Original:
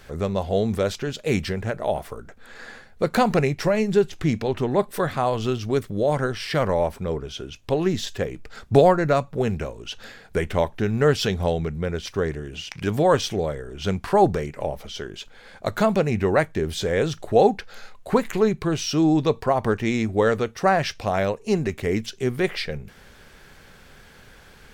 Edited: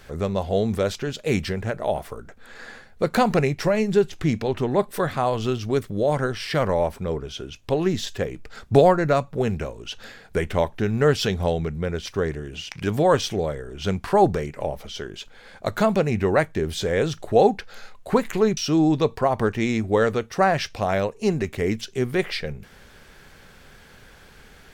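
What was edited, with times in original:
18.57–18.82 cut

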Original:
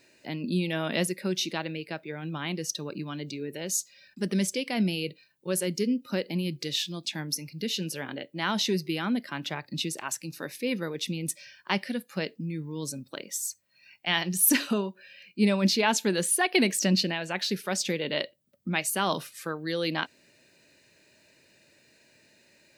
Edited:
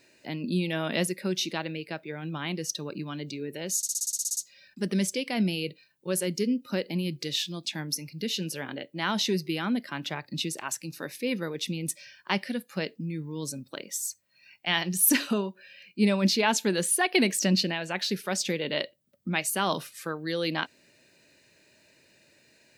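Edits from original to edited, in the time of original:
3.77 stutter 0.06 s, 11 plays

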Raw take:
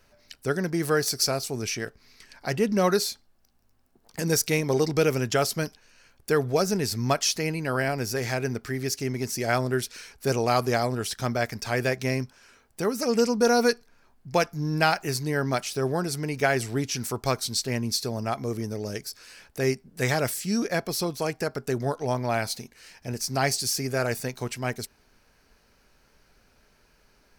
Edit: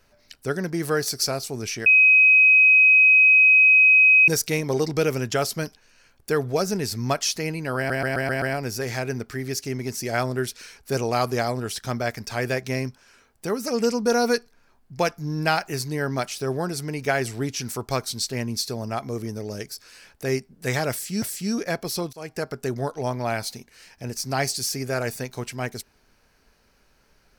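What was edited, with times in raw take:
1.86–4.28 bleep 2530 Hz -11 dBFS
7.77 stutter 0.13 s, 6 plays
20.26–20.57 loop, 2 plays
21.17–21.45 fade in, from -22 dB

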